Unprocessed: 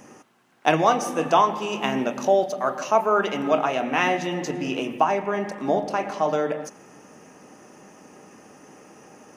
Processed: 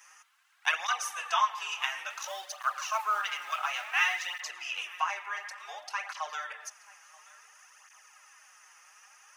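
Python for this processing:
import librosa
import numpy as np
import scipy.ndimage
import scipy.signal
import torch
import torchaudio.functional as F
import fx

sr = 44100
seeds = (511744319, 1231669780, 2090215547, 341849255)

y = fx.law_mismatch(x, sr, coded='mu', at=(2.1, 4.41))
y = scipy.signal.sosfilt(scipy.signal.butter(4, 1200.0, 'highpass', fs=sr, output='sos'), y)
y = y + 10.0 ** (-22.5 / 20.0) * np.pad(y, (int(930 * sr / 1000.0), 0))[:len(y)]
y = fx.flanger_cancel(y, sr, hz=0.57, depth_ms=6.7)
y = F.gain(torch.from_numpy(y), 1.5).numpy()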